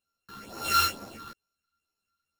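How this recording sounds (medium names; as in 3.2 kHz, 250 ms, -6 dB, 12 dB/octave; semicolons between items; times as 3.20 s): a buzz of ramps at a fixed pitch in blocks of 32 samples; phasing stages 6, 2.2 Hz, lowest notch 580–3100 Hz; aliases and images of a low sample rate 18 kHz, jitter 0%; a shimmering, thickened sound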